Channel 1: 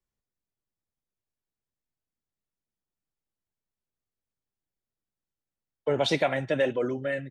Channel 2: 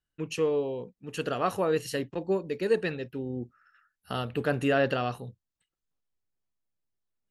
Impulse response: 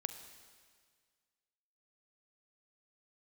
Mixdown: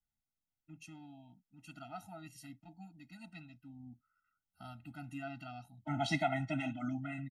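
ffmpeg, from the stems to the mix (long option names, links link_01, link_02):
-filter_complex "[0:a]volume=-3.5dB[link_01];[1:a]adynamicequalizer=threshold=0.00562:dfrequency=3300:dqfactor=0.7:tfrequency=3300:tqfactor=0.7:attack=5:release=100:ratio=0.375:range=2:mode=boostabove:tftype=highshelf,adelay=500,volume=-16dB[link_02];[link_01][link_02]amix=inputs=2:normalize=0,equalizer=frequency=3800:width=4.9:gain=-3,afftfilt=real='re*eq(mod(floor(b*sr/1024/310),2),0)':imag='im*eq(mod(floor(b*sr/1024/310),2),0)':win_size=1024:overlap=0.75"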